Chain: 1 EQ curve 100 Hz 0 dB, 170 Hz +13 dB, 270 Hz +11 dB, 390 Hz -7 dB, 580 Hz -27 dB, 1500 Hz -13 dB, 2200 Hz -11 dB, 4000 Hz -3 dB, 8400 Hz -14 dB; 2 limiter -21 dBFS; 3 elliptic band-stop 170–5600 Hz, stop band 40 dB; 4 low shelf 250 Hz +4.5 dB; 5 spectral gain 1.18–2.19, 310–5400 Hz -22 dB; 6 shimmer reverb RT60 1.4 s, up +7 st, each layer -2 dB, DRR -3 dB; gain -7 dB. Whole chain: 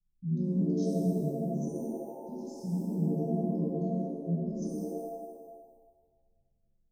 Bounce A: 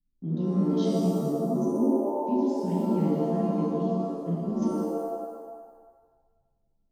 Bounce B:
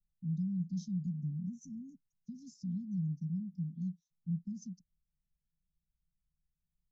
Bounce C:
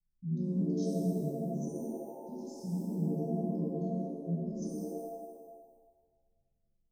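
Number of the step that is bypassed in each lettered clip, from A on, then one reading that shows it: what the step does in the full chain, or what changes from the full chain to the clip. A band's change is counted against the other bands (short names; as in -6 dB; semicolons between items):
3, 125 Hz band -6.0 dB; 6, loudness change -6.0 LU; 4, loudness change -3.0 LU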